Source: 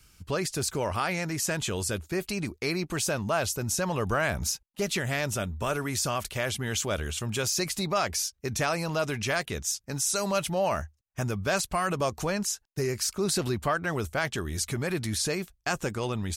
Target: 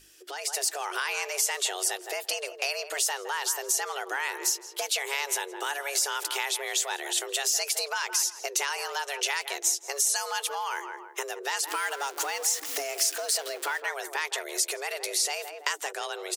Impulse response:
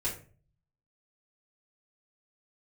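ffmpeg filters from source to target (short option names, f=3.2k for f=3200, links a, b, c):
-filter_complex "[0:a]asettb=1/sr,asplit=3[a][b][c];[a]atrim=end=11.664[d];[b]atrim=start=11.66:end=13.8,asetpts=PTS-STARTPTS,afade=t=in:d=0.004:c=qsin,afade=t=out:st=2.136:d=0.004:c=qsin,aeval=exprs='val(0)+0.5*0.0178*sgn(val(0))':c=same[e];[c]atrim=start=13.796[f];[d][e]acrossfade=d=0.004:c1=hsin:c2=qsin[g];[g][f]acrossfade=d=0.004:c1=qsin:c2=hsin,asplit=2[h][i];[i]adelay=164,lowpass=f=1.2k:p=1,volume=-11.5dB,asplit=2[j][k];[k]adelay=164,lowpass=f=1.2k:p=1,volume=0.26,asplit=2[l][m];[m]adelay=164,lowpass=f=1.2k:p=1,volume=0.26[n];[h][j][l][n]amix=inputs=4:normalize=0,acompressor=threshold=-36dB:ratio=12,afreqshift=280,equalizer=f=150:w=0.32:g=-5.5,aeval=exprs='val(0)+0.00251*(sin(2*PI*50*n/s)+sin(2*PI*2*50*n/s)/2+sin(2*PI*3*50*n/s)/3+sin(2*PI*4*50*n/s)/4+sin(2*PI*5*50*n/s)/5)':c=same,tiltshelf=f=970:g=-6,bandreject=f=50:t=h:w=6,bandreject=f=100:t=h:w=6,bandreject=f=150:t=h:w=6,bandreject=f=200:t=h:w=6,bandreject=f=250:t=h:w=6,bandreject=f=300:t=h:w=6,bandreject=f=350:t=h:w=6,dynaudnorm=f=160:g=5:m=10dB,volume=-1.5dB"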